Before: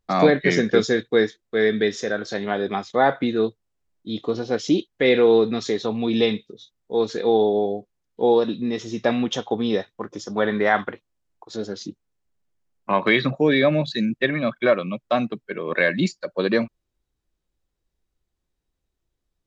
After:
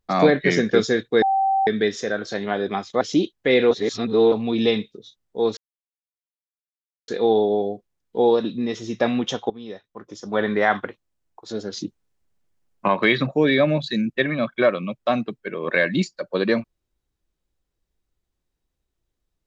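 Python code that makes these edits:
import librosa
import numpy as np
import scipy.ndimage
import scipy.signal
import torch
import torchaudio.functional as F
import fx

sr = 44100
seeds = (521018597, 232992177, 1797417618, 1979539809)

y = fx.edit(x, sr, fx.bleep(start_s=1.22, length_s=0.45, hz=776.0, db=-16.5),
    fx.cut(start_s=3.01, length_s=1.55),
    fx.reverse_span(start_s=5.26, length_s=0.61),
    fx.insert_silence(at_s=7.12, length_s=1.51),
    fx.fade_in_from(start_s=9.54, length_s=0.92, curve='qua', floor_db=-15.0),
    fx.clip_gain(start_s=11.77, length_s=1.15, db=4.0), tone=tone)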